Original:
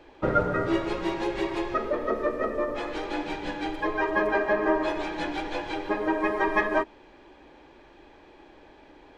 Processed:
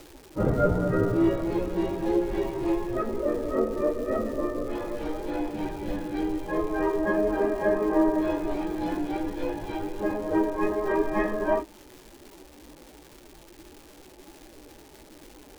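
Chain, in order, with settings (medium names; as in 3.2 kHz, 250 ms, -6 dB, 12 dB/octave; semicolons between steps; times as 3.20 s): plain phase-vocoder stretch 1.7×; tilt shelf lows +8.5 dB, about 840 Hz; crackle 510 per s -39 dBFS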